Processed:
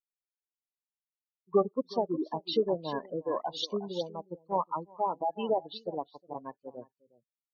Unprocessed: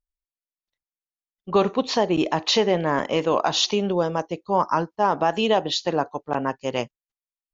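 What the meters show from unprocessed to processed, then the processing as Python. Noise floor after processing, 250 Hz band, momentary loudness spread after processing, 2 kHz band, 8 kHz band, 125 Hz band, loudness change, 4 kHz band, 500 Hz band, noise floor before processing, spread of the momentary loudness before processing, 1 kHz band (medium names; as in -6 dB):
under -85 dBFS, -11.0 dB, 14 LU, -22.5 dB, no reading, -14.0 dB, -10.0 dB, -14.5 dB, -9.0 dB, under -85 dBFS, 7 LU, -10.5 dB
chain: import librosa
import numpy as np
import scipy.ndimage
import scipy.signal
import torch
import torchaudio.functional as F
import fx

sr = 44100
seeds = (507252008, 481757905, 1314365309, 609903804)

y = fx.spec_gate(x, sr, threshold_db=-10, keep='strong')
y = y + 10.0 ** (-10.0 / 20.0) * np.pad(y, (int(363 * sr / 1000.0), 0))[:len(y)]
y = fx.upward_expand(y, sr, threshold_db=-33.0, expansion=2.5)
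y = y * librosa.db_to_amplitude(-3.0)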